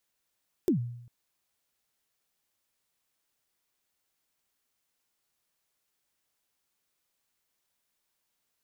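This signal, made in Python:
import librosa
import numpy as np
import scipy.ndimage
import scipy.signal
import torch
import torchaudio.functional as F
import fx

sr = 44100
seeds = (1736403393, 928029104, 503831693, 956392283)

y = fx.drum_kick(sr, seeds[0], length_s=0.4, level_db=-19, start_hz=400.0, end_hz=120.0, sweep_ms=107.0, decay_s=0.77, click=True)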